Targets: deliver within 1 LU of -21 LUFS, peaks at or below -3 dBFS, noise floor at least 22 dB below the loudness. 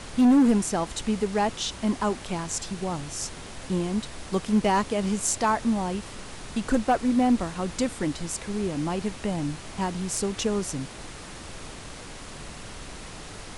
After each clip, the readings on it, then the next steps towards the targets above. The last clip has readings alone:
clipped samples 0.5%; clipping level -14.5 dBFS; noise floor -41 dBFS; noise floor target -49 dBFS; loudness -26.5 LUFS; peak level -14.5 dBFS; loudness target -21.0 LUFS
-> clip repair -14.5 dBFS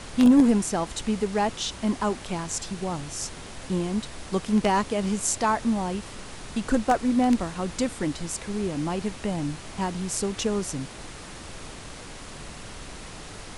clipped samples 0.0%; noise floor -41 dBFS; noise floor target -48 dBFS
-> noise print and reduce 7 dB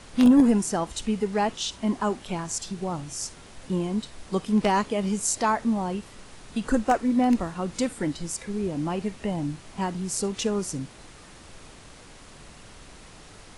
noise floor -48 dBFS; noise floor target -49 dBFS
-> noise print and reduce 6 dB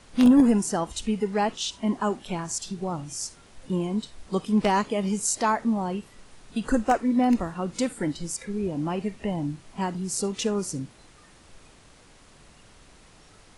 noise floor -54 dBFS; loudness -26.5 LUFS; peak level -6.0 dBFS; loudness target -21.0 LUFS
-> trim +5.5 dB; peak limiter -3 dBFS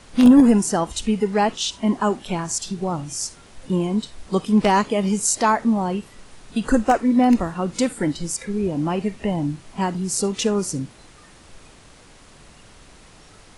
loudness -21.0 LUFS; peak level -3.0 dBFS; noise floor -48 dBFS

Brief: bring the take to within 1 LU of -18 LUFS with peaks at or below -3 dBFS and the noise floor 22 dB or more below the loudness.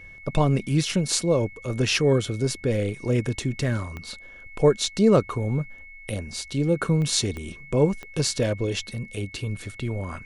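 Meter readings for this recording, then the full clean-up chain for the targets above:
clicks found 4; steady tone 2.2 kHz; tone level -43 dBFS; loudness -24.5 LUFS; peak level -4.5 dBFS; loudness target -18.0 LUFS
-> de-click; band-stop 2.2 kHz, Q 30; trim +6.5 dB; peak limiter -3 dBFS

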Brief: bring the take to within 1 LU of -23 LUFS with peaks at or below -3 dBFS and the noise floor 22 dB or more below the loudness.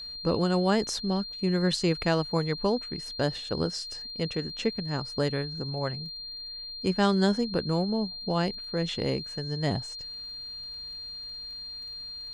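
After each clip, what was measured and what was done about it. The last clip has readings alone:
tick rate 25 per s; steady tone 4.2 kHz; tone level -37 dBFS; loudness -29.5 LUFS; peak level -10.0 dBFS; loudness target -23.0 LUFS
-> de-click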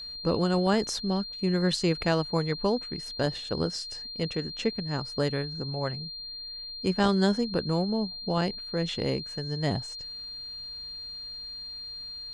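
tick rate 0 per s; steady tone 4.2 kHz; tone level -37 dBFS
-> band-stop 4.2 kHz, Q 30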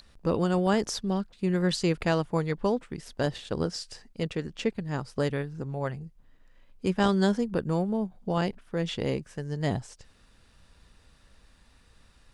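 steady tone not found; loudness -29.0 LUFS; peak level -10.0 dBFS; loudness target -23.0 LUFS
-> trim +6 dB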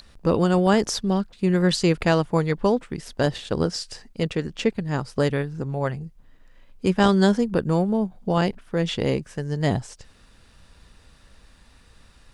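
loudness -23.0 LUFS; peak level -4.0 dBFS; noise floor -54 dBFS

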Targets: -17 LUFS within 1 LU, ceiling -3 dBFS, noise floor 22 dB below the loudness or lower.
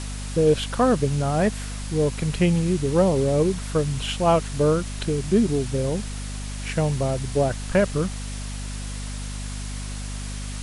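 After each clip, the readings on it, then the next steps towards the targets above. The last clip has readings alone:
hum 50 Hz; highest harmonic 250 Hz; hum level -29 dBFS; noise floor -32 dBFS; noise floor target -46 dBFS; loudness -24.0 LUFS; peak level -8.0 dBFS; loudness target -17.0 LUFS
-> de-hum 50 Hz, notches 5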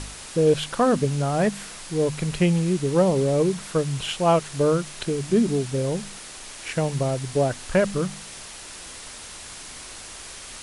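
hum not found; noise floor -40 dBFS; noise floor target -46 dBFS
-> noise reduction 6 dB, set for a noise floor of -40 dBFS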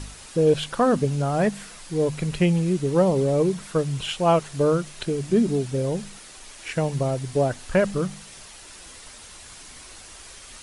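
noise floor -44 dBFS; noise floor target -46 dBFS
-> noise reduction 6 dB, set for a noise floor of -44 dBFS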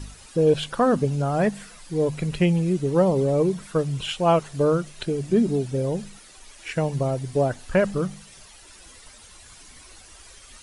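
noise floor -48 dBFS; loudness -23.5 LUFS; peak level -8.5 dBFS; loudness target -17.0 LUFS
-> trim +6.5 dB; peak limiter -3 dBFS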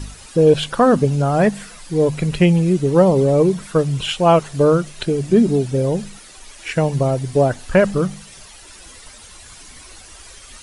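loudness -17.0 LUFS; peak level -3.0 dBFS; noise floor -42 dBFS

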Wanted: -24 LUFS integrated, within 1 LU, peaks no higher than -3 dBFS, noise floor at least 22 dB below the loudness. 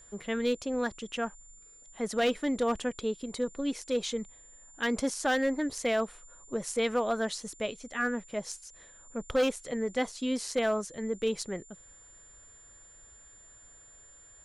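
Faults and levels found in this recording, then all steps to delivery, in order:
clipped samples 0.5%; clipping level -21.0 dBFS; steady tone 7.2 kHz; tone level -53 dBFS; loudness -31.5 LUFS; peak level -21.0 dBFS; loudness target -24.0 LUFS
-> clip repair -21 dBFS; band-stop 7.2 kHz, Q 30; trim +7.5 dB

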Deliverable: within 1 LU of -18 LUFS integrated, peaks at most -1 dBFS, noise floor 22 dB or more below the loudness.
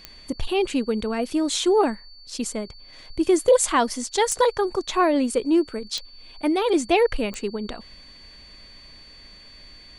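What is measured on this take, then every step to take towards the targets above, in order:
clicks found 4; steady tone 4.5 kHz; tone level -46 dBFS; loudness -23.0 LUFS; peak level -6.5 dBFS; loudness target -18.0 LUFS
-> de-click; band-stop 4.5 kHz, Q 30; trim +5 dB

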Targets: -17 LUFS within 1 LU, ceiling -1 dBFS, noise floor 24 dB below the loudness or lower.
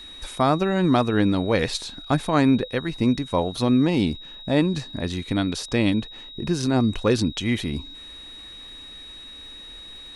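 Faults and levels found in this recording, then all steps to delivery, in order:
tick rate 32 per s; steady tone 3.8 kHz; tone level -39 dBFS; loudness -23.0 LUFS; peak level -5.5 dBFS; loudness target -17.0 LUFS
-> de-click; band-stop 3.8 kHz, Q 30; trim +6 dB; peak limiter -1 dBFS

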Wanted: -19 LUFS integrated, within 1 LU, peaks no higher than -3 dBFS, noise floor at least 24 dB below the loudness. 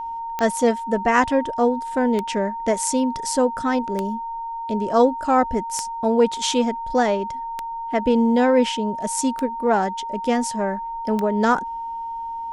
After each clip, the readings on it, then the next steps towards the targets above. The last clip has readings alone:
clicks found 7; steady tone 920 Hz; tone level -27 dBFS; loudness -21.5 LUFS; peak level -3.5 dBFS; loudness target -19.0 LUFS
-> de-click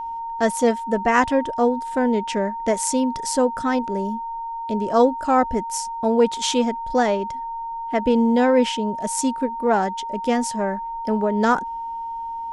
clicks found 0; steady tone 920 Hz; tone level -27 dBFS
-> band-stop 920 Hz, Q 30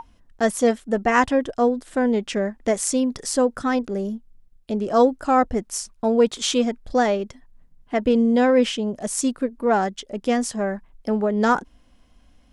steady tone not found; loudness -22.0 LUFS; peak level -4.0 dBFS; loudness target -19.0 LUFS
-> trim +3 dB; peak limiter -3 dBFS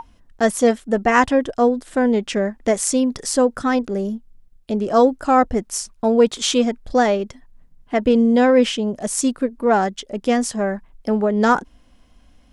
loudness -19.0 LUFS; peak level -3.0 dBFS; noise floor -54 dBFS

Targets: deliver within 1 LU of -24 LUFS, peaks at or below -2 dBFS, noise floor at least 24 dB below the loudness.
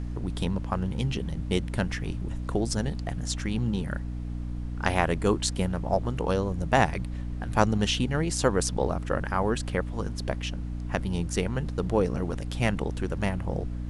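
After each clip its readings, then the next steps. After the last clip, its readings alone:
hum 60 Hz; highest harmonic 300 Hz; hum level -31 dBFS; noise floor -34 dBFS; noise floor target -53 dBFS; loudness -28.5 LUFS; peak level -4.5 dBFS; loudness target -24.0 LUFS
-> hum notches 60/120/180/240/300 Hz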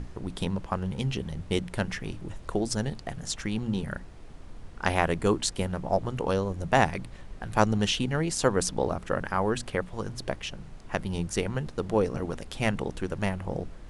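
hum not found; noise floor -45 dBFS; noise floor target -54 dBFS
-> noise print and reduce 9 dB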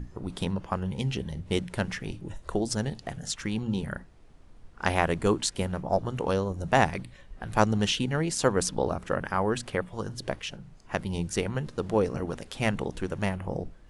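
noise floor -52 dBFS; noise floor target -54 dBFS
-> noise print and reduce 6 dB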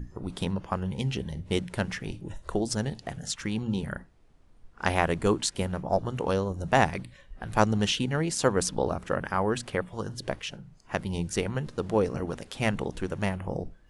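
noise floor -56 dBFS; loudness -29.5 LUFS; peak level -5.5 dBFS; loudness target -24.0 LUFS
-> trim +5.5 dB; peak limiter -2 dBFS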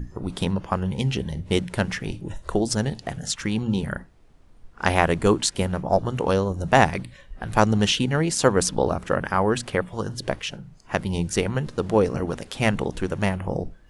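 loudness -24.0 LUFS; peak level -2.0 dBFS; noise floor -50 dBFS

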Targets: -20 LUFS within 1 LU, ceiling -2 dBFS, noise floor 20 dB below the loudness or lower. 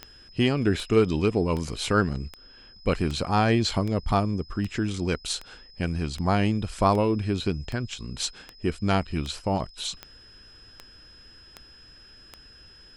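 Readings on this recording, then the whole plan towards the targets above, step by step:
clicks found 17; steady tone 5.1 kHz; tone level -50 dBFS; loudness -26.5 LUFS; peak level -7.5 dBFS; loudness target -20.0 LUFS
-> de-click; band-stop 5.1 kHz, Q 30; trim +6.5 dB; peak limiter -2 dBFS

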